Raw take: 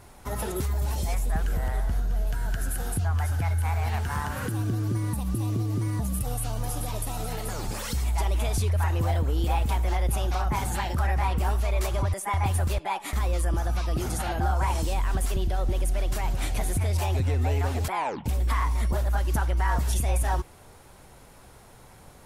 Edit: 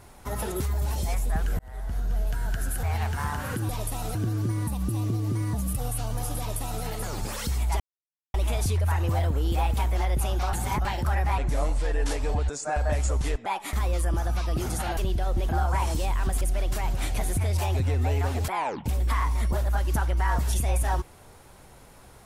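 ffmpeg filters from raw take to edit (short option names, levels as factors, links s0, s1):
-filter_complex "[0:a]asplit=13[s0][s1][s2][s3][s4][s5][s6][s7][s8][s9][s10][s11][s12];[s0]atrim=end=1.59,asetpts=PTS-STARTPTS,afade=t=out:st=1.586:d=0.004:c=hsin[s13];[s1]atrim=start=1.59:end=2.832,asetpts=PTS-STARTPTS,afade=t=in:d=0.51[s14];[s2]atrim=start=3.748:end=4.612[s15];[s3]atrim=start=6.838:end=7.302[s16];[s4]atrim=start=4.608:end=8.26,asetpts=PTS-STARTPTS,afade=t=out:st=3.648:d=0.004:c=hsin,apad=pad_dur=0.54[s17];[s5]atrim=start=8.26:end=10.452,asetpts=PTS-STARTPTS,afade=t=in:d=0.004:c=hsin[s18];[s6]atrim=start=10.448:end=10.772,asetpts=PTS-STARTPTS,areverse[s19];[s7]atrim=start=10.768:end=11.304[s20];[s8]atrim=start=11.3:end=12.86,asetpts=PTS-STARTPTS,asetrate=33075,aresample=44100[s21];[s9]atrim=start=12.856:end=14.372[s22];[s10]atrim=start=15.288:end=15.812[s23];[s11]atrim=start=14.368:end=15.292[s24];[s12]atrim=start=15.808[s25];[s13][s14]concat=n=2:v=0:a=1[s26];[s26][s15]acrossfade=d=0.004:c1=hsin:c2=hsin[s27];[s27][s16]acrossfade=d=0.004:c1=hsin:c2=hsin[s28];[s17][s18]concat=n=2:v=0:a=1[s29];[s28][s29]acrossfade=d=0.004:c1=hsin:c2=hsin[s30];[s30][s19]acrossfade=d=0.004:c1=hsin:c2=hsin[s31];[s31][s20]acrossfade=d=0.004:c1=hsin:c2=hsin[s32];[s32][s21]acrossfade=d=0.004:c1=hsin:c2=hsin[s33];[s33][s22]acrossfade=d=0.004:c1=hsin:c2=hsin[s34];[s34][s23]acrossfade=d=0.004:c1=hsin:c2=hsin[s35];[s35][s24]acrossfade=d=0.004:c1=hsin:c2=hsin[s36];[s36][s25]acrossfade=d=0.004:c1=hsin:c2=hsin"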